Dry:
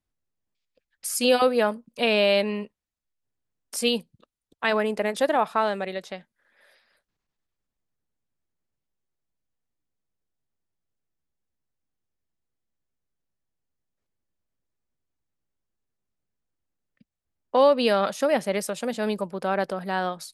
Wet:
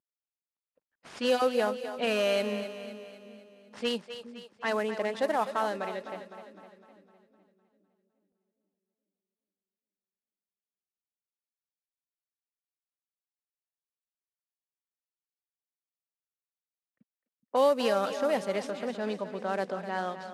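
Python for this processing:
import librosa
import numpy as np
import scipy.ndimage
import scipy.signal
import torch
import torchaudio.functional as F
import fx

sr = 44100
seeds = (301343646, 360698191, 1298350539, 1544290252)

y = fx.cvsd(x, sr, bps=64000)
y = fx.highpass(y, sr, hz=240.0, slope=6)
y = fx.env_lowpass(y, sr, base_hz=1400.0, full_db=-19.0)
y = fx.low_shelf(y, sr, hz=400.0, db=3.5)
y = fx.echo_split(y, sr, split_hz=360.0, low_ms=419, high_ms=254, feedback_pct=52, wet_db=-10.5)
y = y * 10.0 ** (-6.0 / 20.0)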